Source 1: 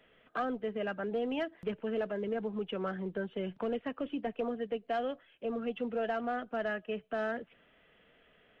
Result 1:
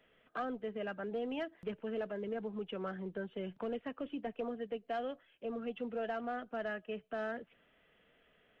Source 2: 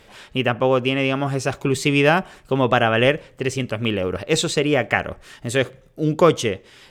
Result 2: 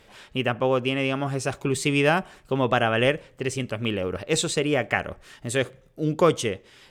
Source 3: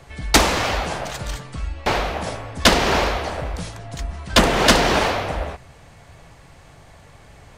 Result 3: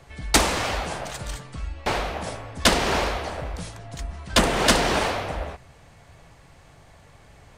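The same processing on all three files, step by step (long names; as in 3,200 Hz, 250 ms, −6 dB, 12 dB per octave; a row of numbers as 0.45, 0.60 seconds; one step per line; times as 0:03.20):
dynamic equaliser 8,900 Hz, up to +6 dB, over −47 dBFS, Q 2.2
level −4.5 dB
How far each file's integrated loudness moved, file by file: −4.5, −4.5, −4.0 LU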